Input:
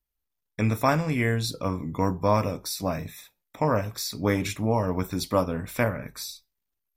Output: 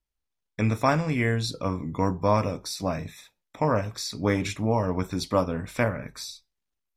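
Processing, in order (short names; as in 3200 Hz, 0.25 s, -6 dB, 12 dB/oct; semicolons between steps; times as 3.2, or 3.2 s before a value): LPF 8300 Hz 12 dB/oct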